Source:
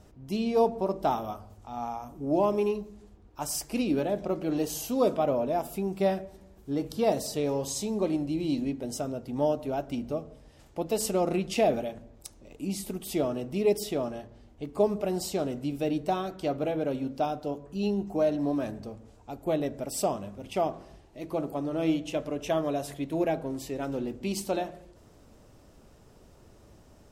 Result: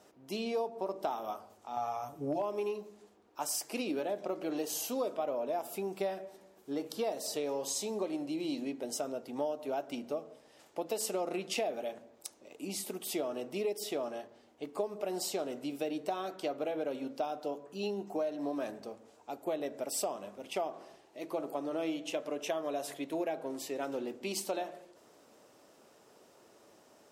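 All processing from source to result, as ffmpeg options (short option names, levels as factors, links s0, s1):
-filter_complex "[0:a]asettb=1/sr,asplit=3[s0][s1][s2];[s0]atrim=end=1.764[s3];[s1]atrim=start=1.76:end=2.42,asetpts=PTS-STARTPTS,afade=t=in:d=0.004:c=qsin,afade=t=out:st=0.656:d=0.004:c=qsin,aecho=1:1:6.9:0.83,atrim=end_sample=29106,asoftclip=type=hard:threshold=0.2,lowshelf=f=160:t=q:w=1.5:g=10.5[s4];[s2]atrim=start=2.416[s5];[s3][s4]acrossfade=d=0.004:c1=hsin:c2=qsin[s6];[s6][s5]acrossfade=d=0.004:c1=qsin:c2=hsin,highpass=370,acompressor=threshold=0.0282:ratio=6"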